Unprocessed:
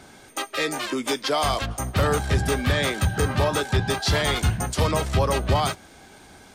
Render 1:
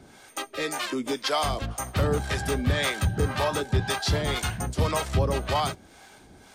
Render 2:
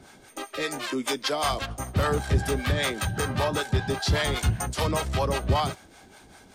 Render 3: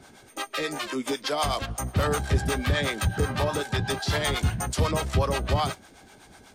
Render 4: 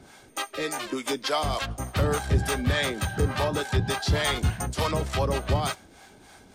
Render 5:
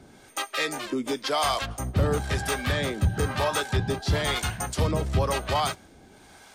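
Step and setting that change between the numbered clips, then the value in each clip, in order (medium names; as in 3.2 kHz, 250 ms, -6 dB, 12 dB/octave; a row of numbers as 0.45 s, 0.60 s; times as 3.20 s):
harmonic tremolo, rate: 1.9 Hz, 5.1 Hz, 8.1 Hz, 3.4 Hz, 1 Hz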